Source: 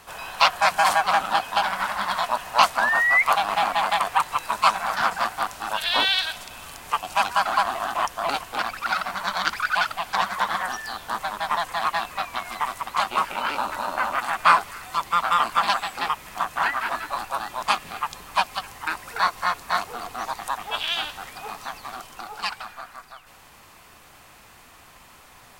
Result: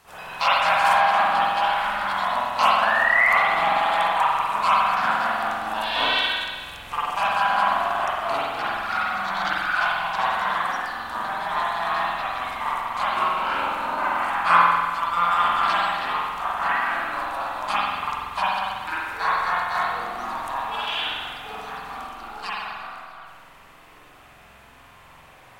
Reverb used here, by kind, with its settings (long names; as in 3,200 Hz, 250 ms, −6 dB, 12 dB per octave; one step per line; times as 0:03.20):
spring reverb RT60 1.5 s, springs 46 ms, chirp 80 ms, DRR −9 dB
level −8 dB